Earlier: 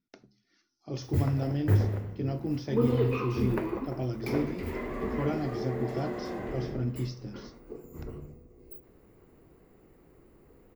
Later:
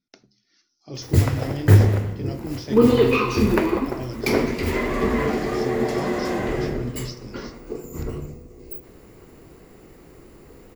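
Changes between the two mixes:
background +11.0 dB; master: add peaking EQ 5.9 kHz +9.5 dB 2.3 oct

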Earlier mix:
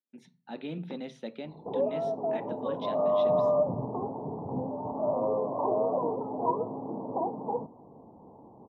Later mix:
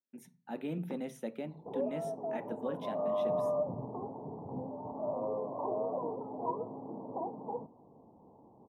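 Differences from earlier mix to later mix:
background -7.0 dB; master: remove resonant low-pass 4.1 kHz, resonance Q 3.4

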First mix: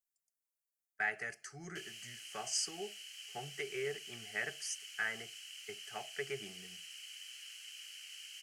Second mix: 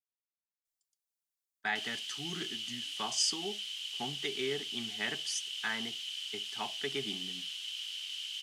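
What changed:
speech: entry +0.65 s; master: remove static phaser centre 980 Hz, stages 6

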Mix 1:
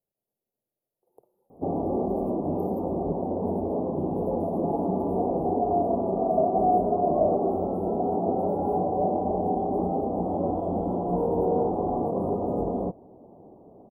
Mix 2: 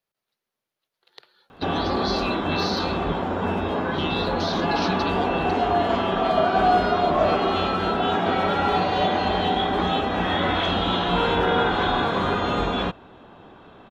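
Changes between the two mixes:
background: add bass shelf 96 Hz +11.5 dB; master: remove inverse Chebyshev band-stop 1.5–5.8 kHz, stop band 50 dB

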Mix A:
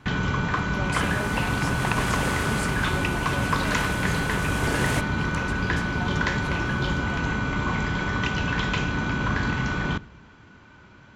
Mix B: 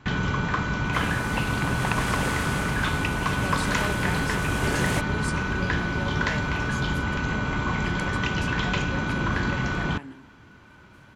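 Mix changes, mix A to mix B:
speech: entry +2.65 s; reverb: off

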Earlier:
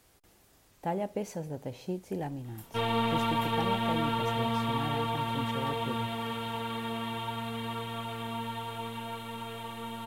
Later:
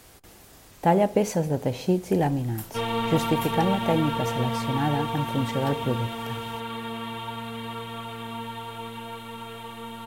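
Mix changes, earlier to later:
speech +11.5 dB; reverb: on, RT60 0.65 s

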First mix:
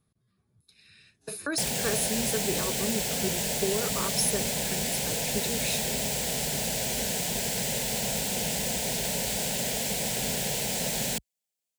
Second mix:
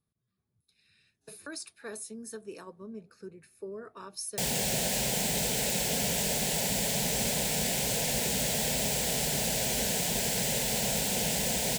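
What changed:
speech -10.5 dB; background: entry +2.80 s

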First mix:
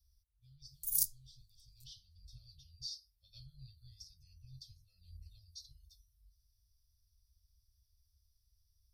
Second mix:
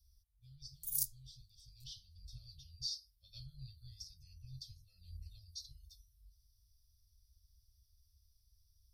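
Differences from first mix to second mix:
speech +3.5 dB; background -4.0 dB

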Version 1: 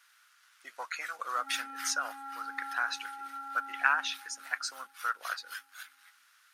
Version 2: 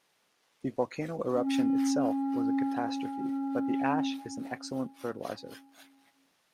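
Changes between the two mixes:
speech: add tilt EQ -2.5 dB/octave; master: remove resonant high-pass 1.4 kHz, resonance Q 5.7

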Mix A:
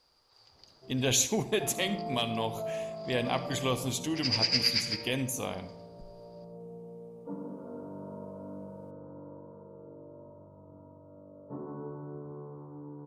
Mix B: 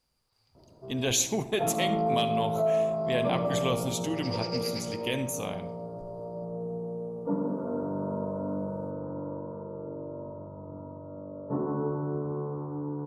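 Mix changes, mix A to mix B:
first sound +10.5 dB; second sound -11.5 dB

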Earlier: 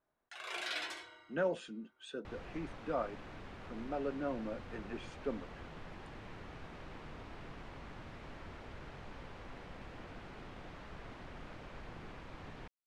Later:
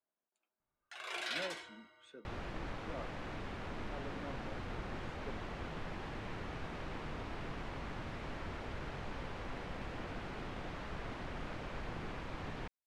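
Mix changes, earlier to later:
speech -11.0 dB; first sound: entry +0.60 s; second sound +6.0 dB

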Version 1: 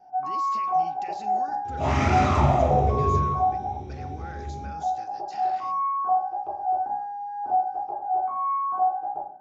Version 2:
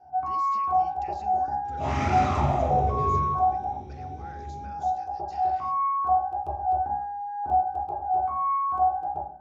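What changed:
speech -6.0 dB; first sound: remove band-pass 270–2000 Hz; second sound -4.5 dB

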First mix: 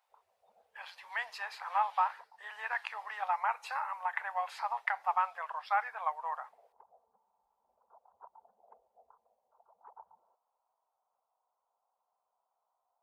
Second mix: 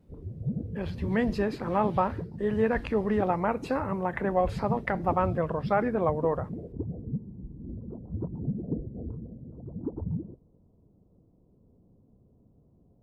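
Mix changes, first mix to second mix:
background -5.5 dB; master: remove elliptic high-pass 820 Hz, stop band 60 dB

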